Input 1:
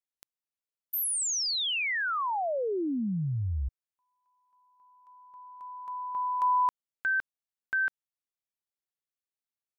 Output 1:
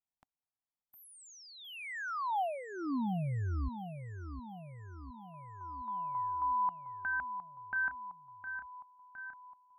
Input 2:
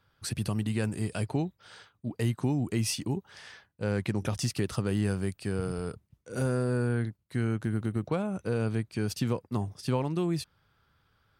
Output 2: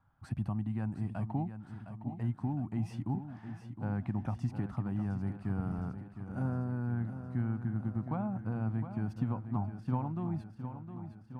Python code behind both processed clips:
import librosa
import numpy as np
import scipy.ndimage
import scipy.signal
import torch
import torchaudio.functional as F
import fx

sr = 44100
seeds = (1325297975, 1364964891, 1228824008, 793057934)

y = fx.curve_eq(x, sr, hz=(270.0, 450.0, 770.0, 4200.0, 13000.0), db=(0, -17, 4, -24, -28))
y = fx.rider(y, sr, range_db=4, speed_s=0.5)
y = fx.echo_feedback(y, sr, ms=711, feedback_pct=60, wet_db=-10)
y = y * librosa.db_to_amplitude(-3.5)